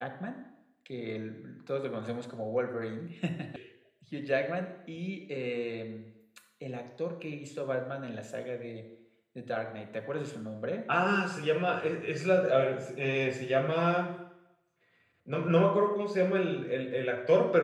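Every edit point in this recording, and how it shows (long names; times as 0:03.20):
0:03.56: cut off before it has died away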